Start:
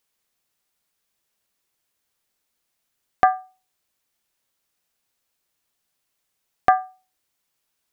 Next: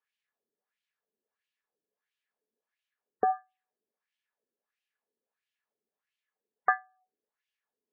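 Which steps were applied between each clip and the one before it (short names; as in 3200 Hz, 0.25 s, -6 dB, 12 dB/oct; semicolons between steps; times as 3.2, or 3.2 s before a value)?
wah 1.5 Hz 350–2900 Hz, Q 2.5; small resonant body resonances 220/430/1700 Hz, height 12 dB, ringing for 45 ms; spectral gate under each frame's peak -30 dB strong; gain -3.5 dB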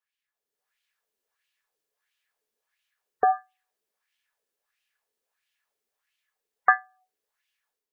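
bell 220 Hz -15 dB 2.4 oct; AGC gain up to 10 dB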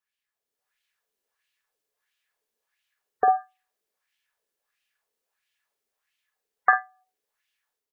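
doubler 48 ms -8 dB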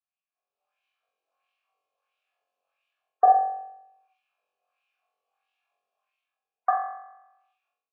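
flutter echo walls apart 3.8 m, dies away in 0.83 s; AGC gain up to 11 dB; vowel filter a; gain -1 dB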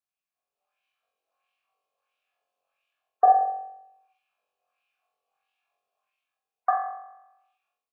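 echo 0.177 s -21 dB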